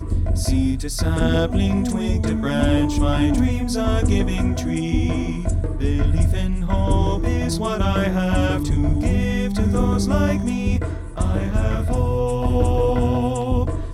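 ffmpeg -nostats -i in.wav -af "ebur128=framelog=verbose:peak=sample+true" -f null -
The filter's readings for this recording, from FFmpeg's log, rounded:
Integrated loudness:
  I:         -20.8 LUFS
  Threshold: -30.8 LUFS
Loudness range:
  LRA:         1.4 LU
  Threshold: -40.8 LUFS
  LRA low:   -21.5 LUFS
  LRA high:  -20.1 LUFS
Sample peak:
  Peak:       -5.2 dBFS
True peak:
  Peak:       -5.2 dBFS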